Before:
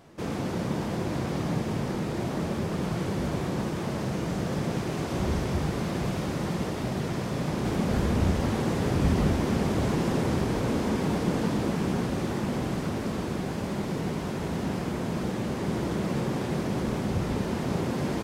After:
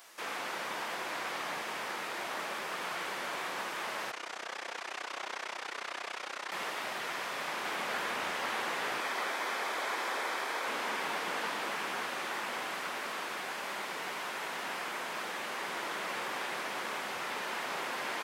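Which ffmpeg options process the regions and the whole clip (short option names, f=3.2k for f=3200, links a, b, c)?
-filter_complex "[0:a]asettb=1/sr,asplit=3[a][b][c];[a]atrim=end=4.114[d];[b]atrim=start=4.11:end=6.52,asetpts=PTS-STARTPTS,afade=t=in:d=0.004:c=qsin,afade=t=out:st=2.406:d=0.004:c=qsin,highpass=300,lowpass=7.2k,tremolo=f=31:d=0.889[e];[c]atrim=start=6.516[f];[d][e]acrossfade=d=0.004:c1=hsin:c2=qsin[g];[g][f]acrossfade=d=0.004:c1=qsin:c2=hsin,asettb=1/sr,asplit=3[h][i][j];[h]atrim=end=9.004[k];[i]atrim=start=9:end=10.67,asetpts=PTS-STARTPTS,afade=t=in:d=0.004:c=qsin,afade=t=out:st=1.666:d=0.004:c=qsin,highpass=310,bandreject=f=2.8k:w=9.5[l];[j]atrim=start=10.666[m];[k][l]acrossfade=d=0.004:c1=hsin:c2=qsin[n];[n][m]acrossfade=d=0.004:c1=qsin:c2=hsin,highpass=1.2k,highshelf=f=7.1k:g=11,acrossover=split=3300[o][p];[p]acompressor=threshold=-56dB:ratio=4:attack=1:release=60[q];[o][q]amix=inputs=2:normalize=0,volume=5.5dB"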